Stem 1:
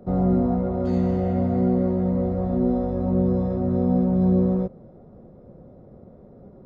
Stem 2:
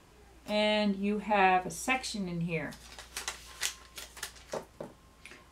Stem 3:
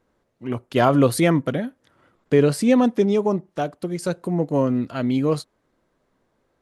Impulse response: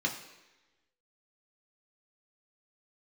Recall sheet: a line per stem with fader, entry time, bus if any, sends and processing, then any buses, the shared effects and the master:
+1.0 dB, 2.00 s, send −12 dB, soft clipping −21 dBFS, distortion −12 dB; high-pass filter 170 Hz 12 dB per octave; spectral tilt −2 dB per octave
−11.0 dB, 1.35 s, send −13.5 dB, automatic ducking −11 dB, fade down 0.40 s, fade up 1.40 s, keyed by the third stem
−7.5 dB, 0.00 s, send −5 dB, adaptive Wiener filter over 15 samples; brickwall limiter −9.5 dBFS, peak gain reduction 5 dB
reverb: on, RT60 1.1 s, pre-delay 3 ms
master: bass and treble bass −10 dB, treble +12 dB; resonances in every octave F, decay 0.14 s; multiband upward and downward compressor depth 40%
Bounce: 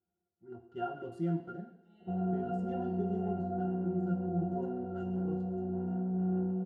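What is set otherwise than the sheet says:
stem 1: send off
master: missing multiband upward and downward compressor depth 40%

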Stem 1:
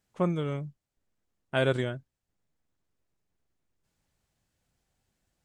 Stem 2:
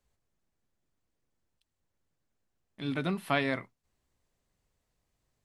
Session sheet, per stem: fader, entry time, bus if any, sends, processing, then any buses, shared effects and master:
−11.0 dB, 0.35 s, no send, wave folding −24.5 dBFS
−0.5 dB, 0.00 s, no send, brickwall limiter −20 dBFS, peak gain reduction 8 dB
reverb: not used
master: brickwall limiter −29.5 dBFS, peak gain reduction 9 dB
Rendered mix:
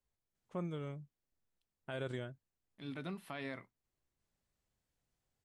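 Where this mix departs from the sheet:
stem 1: missing wave folding −24.5 dBFS
stem 2 −0.5 dB → −11.0 dB

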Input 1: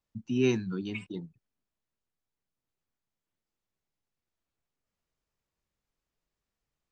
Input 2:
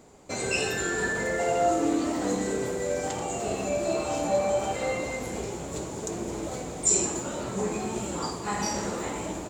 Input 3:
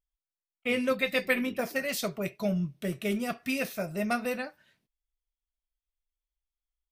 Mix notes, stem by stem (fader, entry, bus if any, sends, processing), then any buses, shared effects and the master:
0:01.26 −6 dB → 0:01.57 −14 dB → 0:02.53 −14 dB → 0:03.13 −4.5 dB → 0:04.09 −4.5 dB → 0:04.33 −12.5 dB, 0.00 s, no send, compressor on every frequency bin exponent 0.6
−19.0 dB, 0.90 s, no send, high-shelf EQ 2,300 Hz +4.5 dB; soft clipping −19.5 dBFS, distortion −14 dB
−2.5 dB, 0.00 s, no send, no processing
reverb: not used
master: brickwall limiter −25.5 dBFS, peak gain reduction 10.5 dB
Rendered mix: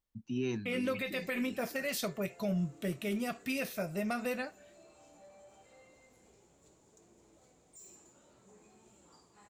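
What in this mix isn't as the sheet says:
stem 1: missing compressor on every frequency bin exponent 0.6
stem 2 −19.0 dB → −31.0 dB

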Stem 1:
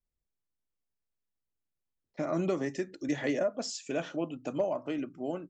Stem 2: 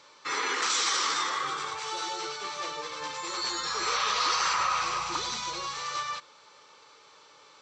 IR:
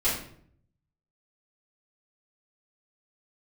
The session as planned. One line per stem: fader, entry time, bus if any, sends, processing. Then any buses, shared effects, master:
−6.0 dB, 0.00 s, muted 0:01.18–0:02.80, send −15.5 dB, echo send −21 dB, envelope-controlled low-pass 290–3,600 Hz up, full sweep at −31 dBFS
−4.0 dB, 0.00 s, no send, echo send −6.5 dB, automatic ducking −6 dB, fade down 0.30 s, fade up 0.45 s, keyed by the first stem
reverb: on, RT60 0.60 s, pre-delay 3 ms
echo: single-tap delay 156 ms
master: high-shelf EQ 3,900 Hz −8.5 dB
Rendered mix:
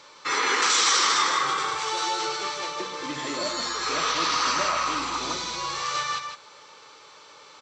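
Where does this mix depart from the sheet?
stem 2 −4.0 dB → +5.5 dB
master: missing high-shelf EQ 3,900 Hz −8.5 dB

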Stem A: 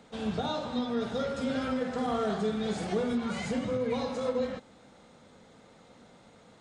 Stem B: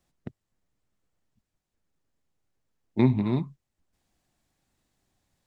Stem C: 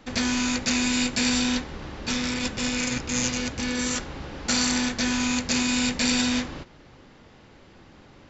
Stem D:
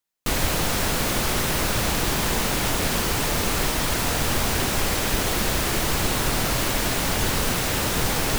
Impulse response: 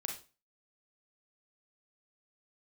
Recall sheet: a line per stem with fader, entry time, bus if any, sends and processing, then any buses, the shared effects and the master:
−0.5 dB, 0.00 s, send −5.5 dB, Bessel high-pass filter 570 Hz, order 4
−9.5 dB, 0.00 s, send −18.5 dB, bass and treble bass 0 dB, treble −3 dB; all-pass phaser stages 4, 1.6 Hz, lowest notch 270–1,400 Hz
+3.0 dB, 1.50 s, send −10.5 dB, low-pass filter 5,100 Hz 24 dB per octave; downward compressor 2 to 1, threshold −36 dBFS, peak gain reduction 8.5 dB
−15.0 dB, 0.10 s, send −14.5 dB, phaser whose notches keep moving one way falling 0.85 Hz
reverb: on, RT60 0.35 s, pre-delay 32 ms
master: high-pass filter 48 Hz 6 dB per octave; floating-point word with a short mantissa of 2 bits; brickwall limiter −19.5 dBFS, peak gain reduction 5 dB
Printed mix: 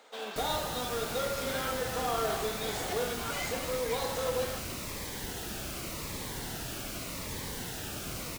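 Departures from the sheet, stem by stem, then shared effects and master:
stem B: muted
stem C: muted

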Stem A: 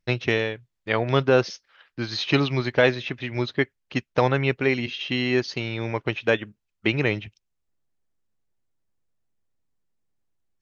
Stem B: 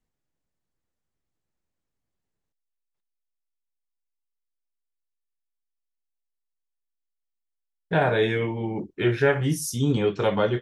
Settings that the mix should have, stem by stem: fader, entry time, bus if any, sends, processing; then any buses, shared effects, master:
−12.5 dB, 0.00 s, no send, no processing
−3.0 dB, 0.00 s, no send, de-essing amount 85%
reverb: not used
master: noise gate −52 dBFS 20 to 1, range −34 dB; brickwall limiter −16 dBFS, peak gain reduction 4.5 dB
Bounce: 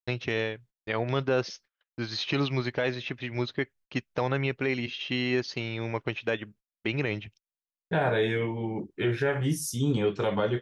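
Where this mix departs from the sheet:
stem A −12.5 dB → −4.0 dB
stem B: missing de-essing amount 85%

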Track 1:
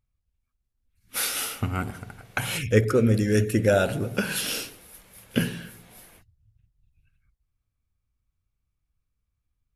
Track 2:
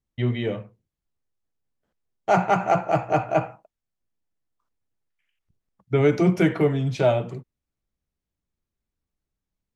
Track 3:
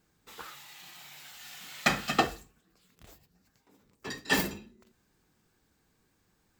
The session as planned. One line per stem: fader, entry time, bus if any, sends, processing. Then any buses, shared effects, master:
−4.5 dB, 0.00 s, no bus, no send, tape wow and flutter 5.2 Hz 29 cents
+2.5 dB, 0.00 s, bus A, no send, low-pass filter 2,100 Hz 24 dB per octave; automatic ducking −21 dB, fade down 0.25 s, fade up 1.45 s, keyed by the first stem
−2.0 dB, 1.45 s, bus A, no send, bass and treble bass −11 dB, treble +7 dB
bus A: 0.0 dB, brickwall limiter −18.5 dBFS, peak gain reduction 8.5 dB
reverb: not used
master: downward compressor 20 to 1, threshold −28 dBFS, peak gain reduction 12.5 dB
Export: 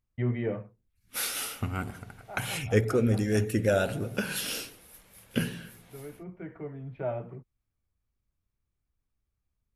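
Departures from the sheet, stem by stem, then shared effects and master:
stem 2 +2.5 dB → −4.0 dB
stem 3: muted
master: missing downward compressor 20 to 1, threshold −28 dBFS, peak gain reduction 12.5 dB

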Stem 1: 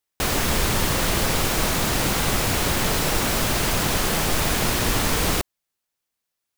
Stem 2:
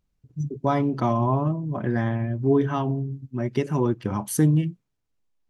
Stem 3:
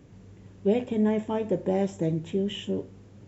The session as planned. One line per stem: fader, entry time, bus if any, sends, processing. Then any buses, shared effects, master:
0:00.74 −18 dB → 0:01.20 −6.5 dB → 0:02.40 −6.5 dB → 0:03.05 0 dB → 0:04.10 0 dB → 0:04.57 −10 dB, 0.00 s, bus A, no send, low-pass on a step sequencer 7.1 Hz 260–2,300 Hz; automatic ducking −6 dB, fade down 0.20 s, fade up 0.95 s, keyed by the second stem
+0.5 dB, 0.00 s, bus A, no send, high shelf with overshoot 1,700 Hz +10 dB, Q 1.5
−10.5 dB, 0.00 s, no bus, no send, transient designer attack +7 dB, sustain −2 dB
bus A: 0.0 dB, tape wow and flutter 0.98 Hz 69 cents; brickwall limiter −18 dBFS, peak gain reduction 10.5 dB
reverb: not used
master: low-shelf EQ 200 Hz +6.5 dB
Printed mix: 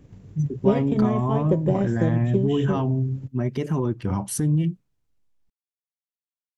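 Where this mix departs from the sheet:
stem 1: muted
stem 2: missing high shelf with overshoot 1,700 Hz +10 dB, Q 1.5
stem 3 −10.5 dB → −2.5 dB

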